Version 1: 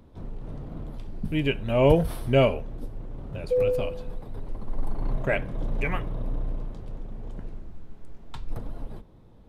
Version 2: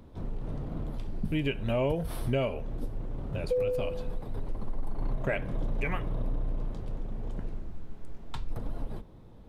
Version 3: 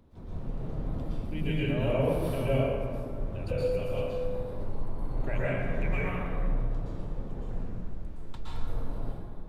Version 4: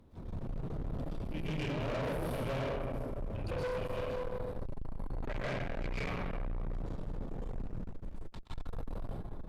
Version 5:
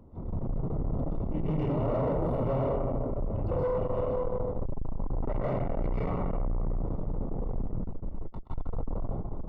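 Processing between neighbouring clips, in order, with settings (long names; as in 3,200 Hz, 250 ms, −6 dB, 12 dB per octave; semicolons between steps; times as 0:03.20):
downward compressor 6 to 1, threshold −27 dBFS, peak gain reduction 13.5 dB; level +1.5 dB
dense smooth reverb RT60 2 s, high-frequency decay 0.5×, pre-delay 105 ms, DRR −9 dB; level −8.5 dB
tube saturation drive 35 dB, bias 0.55; level +2 dB
Savitzky-Golay smoothing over 65 samples; level +7.5 dB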